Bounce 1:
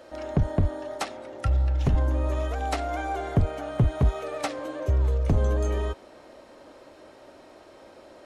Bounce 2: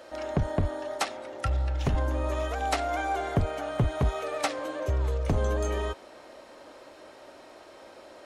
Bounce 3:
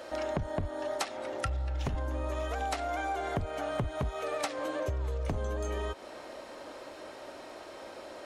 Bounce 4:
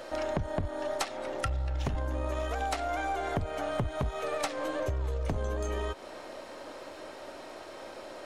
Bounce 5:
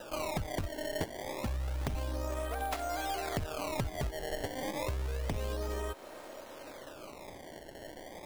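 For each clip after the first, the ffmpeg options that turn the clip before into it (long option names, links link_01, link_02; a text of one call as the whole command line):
ffmpeg -i in.wav -af "lowshelf=frequency=400:gain=-8,volume=3dB" out.wav
ffmpeg -i in.wav -af "acompressor=threshold=-34dB:ratio=6,volume=3.5dB" out.wav
ffmpeg -i in.wav -af "aeval=exprs='if(lt(val(0),0),0.708*val(0),val(0))':channel_layout=same,volume=2.5dB" out.wav
ffmpeg -i in.wav -af "acrusher=samples=20:mix=1:aa=0.000001:lfo=1:lforange=32:lforate=0.29,volume=-3.5dB" out.wav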